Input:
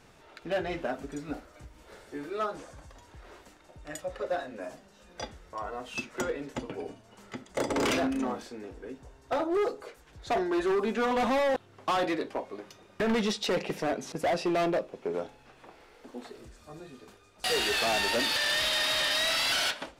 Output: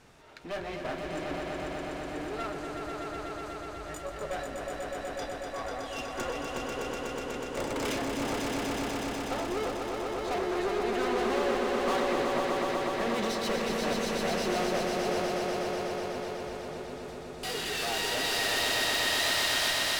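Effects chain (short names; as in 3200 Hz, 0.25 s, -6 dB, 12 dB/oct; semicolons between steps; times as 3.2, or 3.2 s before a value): repeated pitch sweeps +1 st, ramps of 1.232 s; one-sided clip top -40 dBFS, bottom -27 dBFS; swelling echo 0.123 s, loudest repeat 5, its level -5 dB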